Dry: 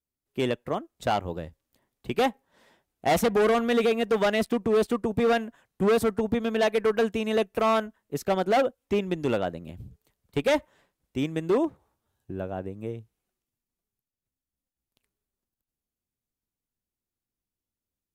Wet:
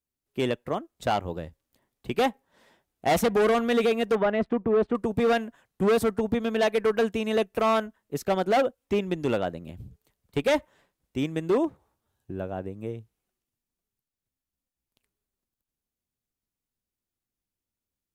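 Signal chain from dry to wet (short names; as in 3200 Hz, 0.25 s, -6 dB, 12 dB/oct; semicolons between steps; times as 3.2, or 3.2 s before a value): 4.15–4.95 LPF 1700 Hz 12 dB/oct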